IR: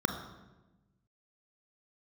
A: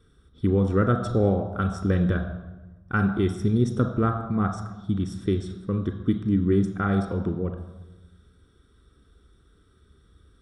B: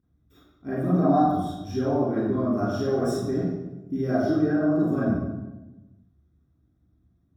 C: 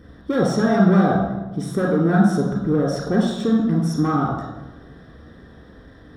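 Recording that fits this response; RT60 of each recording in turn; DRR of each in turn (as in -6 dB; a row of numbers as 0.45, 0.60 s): A; 1.1, 1.1, 1.1 s; 5.0, -10.0, -2.5 dB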